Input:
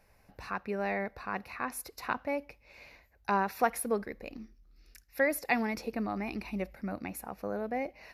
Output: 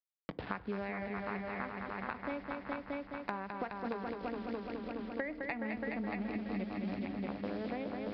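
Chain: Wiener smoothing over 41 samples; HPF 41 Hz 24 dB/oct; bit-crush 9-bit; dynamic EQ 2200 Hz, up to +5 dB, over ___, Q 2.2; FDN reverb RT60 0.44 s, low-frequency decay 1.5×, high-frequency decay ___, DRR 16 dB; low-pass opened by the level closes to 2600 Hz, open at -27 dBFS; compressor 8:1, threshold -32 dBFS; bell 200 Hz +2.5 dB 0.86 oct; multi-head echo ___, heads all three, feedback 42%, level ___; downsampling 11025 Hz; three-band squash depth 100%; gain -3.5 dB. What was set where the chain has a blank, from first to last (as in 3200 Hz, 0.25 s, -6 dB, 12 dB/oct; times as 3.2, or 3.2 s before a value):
-47 dBFS, 0.5×, 0.21 s, -7 dB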